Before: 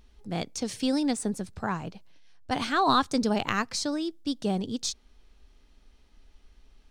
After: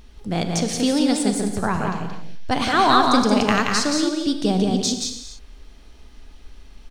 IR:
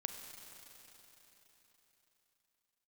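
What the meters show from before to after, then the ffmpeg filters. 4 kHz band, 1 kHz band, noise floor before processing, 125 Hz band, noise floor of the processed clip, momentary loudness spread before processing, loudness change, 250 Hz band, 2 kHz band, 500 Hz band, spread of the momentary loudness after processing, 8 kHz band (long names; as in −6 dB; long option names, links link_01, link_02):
+9.0 dB, +8.5 dB, −60 dBFS, +10.0 dB, −45 dBFS, 11 LU, +8.5 dB, +9.0 dB, +8.5 dB, +9.0 dB, 12 LU, +9.5 dB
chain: -filter_complex "[0:a]asplit=2[link_01][link_02];[link_02]acompressor=threshold=-37dB:ratio=6,volume=1.5dB[link_03];[link_01][link_03]amix=inputs=2:normalize=0,aecho=1:1:176:0.668[link_04];[1:a]atrim=start_sample=2205,afade=type=out:start_time=0.34:duration=0.01,atrim=end_sample=15435[link_05];[link_04][link_05]afir=irnorm=-1:irlink=0,volume=6.5dB"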